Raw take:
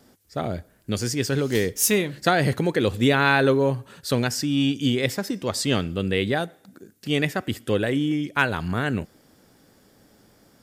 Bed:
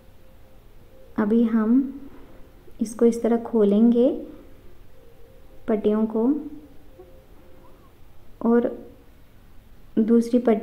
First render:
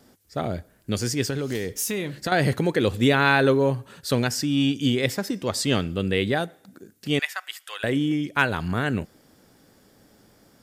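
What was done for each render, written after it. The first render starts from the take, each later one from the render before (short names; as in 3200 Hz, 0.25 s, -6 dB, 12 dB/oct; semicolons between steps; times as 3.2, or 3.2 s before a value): 1.3–2.32 compressor, threshold -23 dBFS; 7.19–7.84 HPF 970 Hz 24 dB/oct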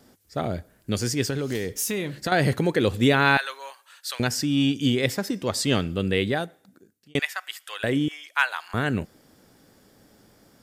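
3.37–4.2 Bessel high-pass 1400 Hz, order 4; 6.18–7.15 fade out; 8.08–8.74 HPF 850 Hz 24 dB/oct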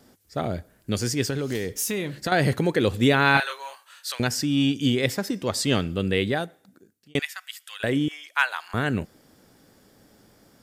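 3.32–4.12 doubler 28 ms -3.5 dB; 7.22–7.8 passive tone stack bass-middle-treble 10-0-10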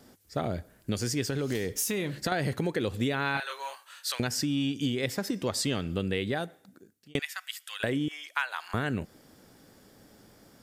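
compressor 6:1, threshold -26 dBFS, peak gain reduction 11.5 dB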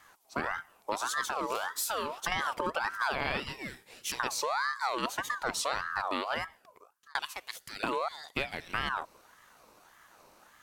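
ring modulator with a swept carrier 1100 Hz, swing 35%, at 1.7 Hz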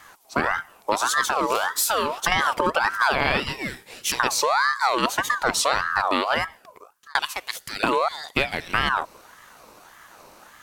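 gain +10.5 dB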